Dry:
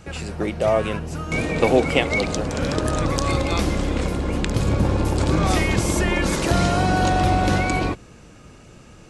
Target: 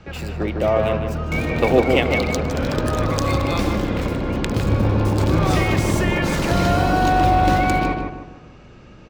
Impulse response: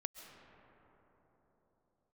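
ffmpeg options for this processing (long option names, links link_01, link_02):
-filter_complex "[0:a]acrossover=split=140|5300[link_01][link_02][link_03];[link_03]acrusher=bits=4:dc=4:mix=0:aa=0.000001[link_04];[link_01][link_02][link_04]amix=inputs=3:normalize=0,asplit=2[link_05][link_06];[link_06]adelay=154,lowpass=frequency=1900:poles=1,volume=-3.5dB,asplit=2[link_07][link_08];[link_08]adelay=154,lowpass=frequency=1900:poles=1,volume=0.41,asplit=2[link_09][link_10];[link_10]adelay=154,lowpass=frequency=1900:poles=1,volume=0.41,asplit=2[link_11][link_12];[link_12]adelay=154,lowpass=frequency=1900:poles=1,volume=0.41,asplit=2[link_13][link_14];[link_14]adelay=154,lowpass=frequency=1900:poles=1,volume=0.41[link_15];[link_05][link_07][link_09][link_11][link_13][link_15]amix=inputs=6:normalize=0"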